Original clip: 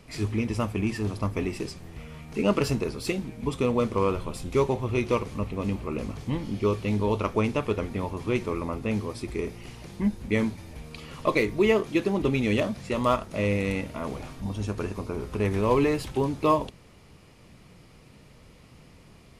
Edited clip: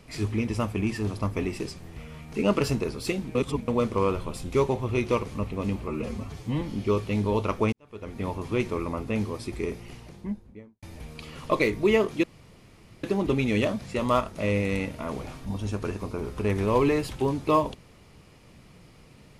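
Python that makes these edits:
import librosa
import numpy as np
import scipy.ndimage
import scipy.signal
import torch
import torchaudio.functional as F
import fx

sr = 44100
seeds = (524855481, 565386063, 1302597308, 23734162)

y = fx.studio_fade_out(x, sr, start_s=9.46, length_s=1.12)
y = fx.edit(y, sr, fx.reverse_span(start_s=3.35, length_s=0.33),
    fx.stretch_span(start_s=5.88, length_s=0.49, factor=1.5),
    fx.fade_in_span(start_s=7.48, length_s=0.53, curve='qua'),
    fx.insert_room_tone(at_s=11.99, length_s=0.8), tone=tone)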